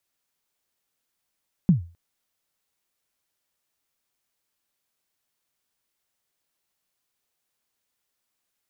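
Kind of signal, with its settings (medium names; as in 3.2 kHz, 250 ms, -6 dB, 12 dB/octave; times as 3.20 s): kick drum length 0.26 s, from 200 Hz, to 85 Hz, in 124 ms, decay 0.34 s, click off, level -9.5 dB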